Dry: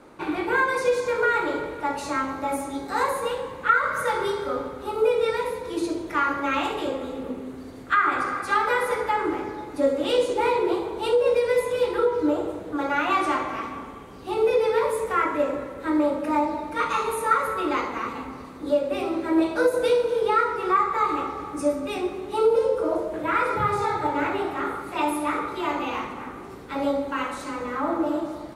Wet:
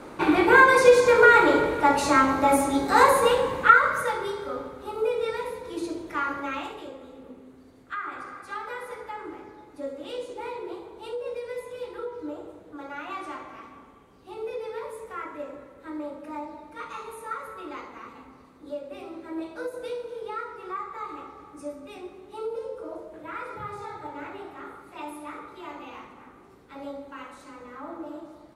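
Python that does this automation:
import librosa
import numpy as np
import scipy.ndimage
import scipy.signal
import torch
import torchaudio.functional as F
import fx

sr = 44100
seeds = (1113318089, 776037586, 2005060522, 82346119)

y = fx.gain(x, sr, db=fx.line((3.58, 7.0), (4.22, -5.0), (6.39, -5.0), (6.9, -13.0)))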